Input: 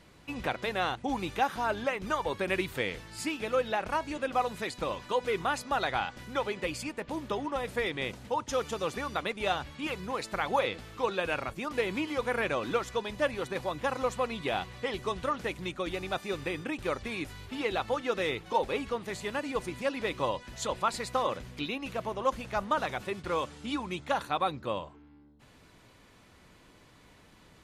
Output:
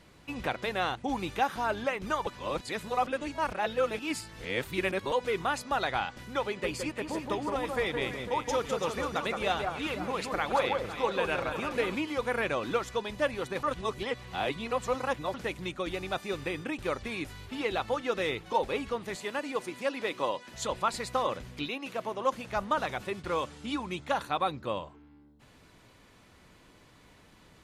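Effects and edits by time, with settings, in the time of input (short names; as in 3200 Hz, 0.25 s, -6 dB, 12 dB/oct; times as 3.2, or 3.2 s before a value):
2.27–5.12 reverse
6.46–11.95 echo with dull and thin repeats by turns 0.168 s, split 1600 Hz, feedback 67%, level -4 dB
13.63–15.34 reverse
19.15–20.54 HPF 230 Hz
21.68–22.48 HPF 280 Hz -> 120 Hz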